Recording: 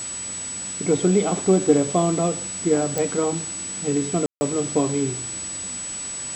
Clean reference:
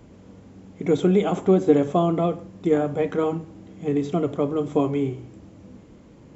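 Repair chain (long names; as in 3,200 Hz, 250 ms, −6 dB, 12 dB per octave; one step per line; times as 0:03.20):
click removal
notch filter 7,900 Hz, Q 30
ambience match 0:04.26–0:04.41
noise reduction from a noise print 16 dB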